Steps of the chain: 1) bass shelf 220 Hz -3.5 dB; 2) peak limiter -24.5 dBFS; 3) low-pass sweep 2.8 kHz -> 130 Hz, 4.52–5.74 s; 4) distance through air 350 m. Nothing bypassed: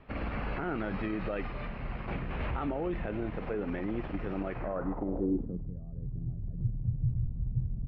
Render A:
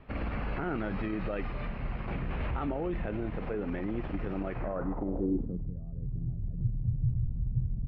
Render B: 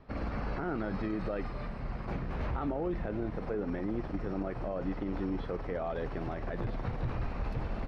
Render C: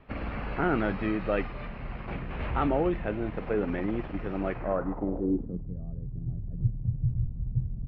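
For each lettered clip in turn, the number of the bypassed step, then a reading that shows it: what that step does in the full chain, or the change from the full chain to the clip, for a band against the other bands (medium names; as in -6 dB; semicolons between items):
1, 125 Hz band +2.0 dB; 3, momentary loudness spread change -4 LU; 2, mean gain reduction 2.5 dB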